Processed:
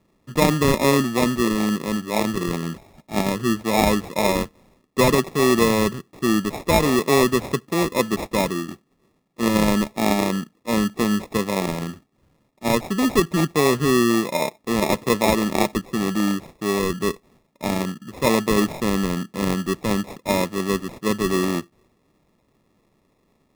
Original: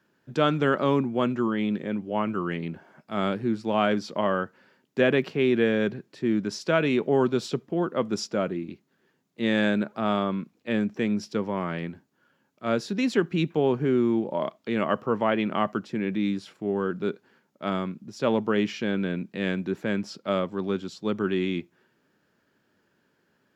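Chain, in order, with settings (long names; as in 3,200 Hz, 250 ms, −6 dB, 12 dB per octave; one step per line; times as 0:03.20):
decimation without filtering 29×
level +5 dB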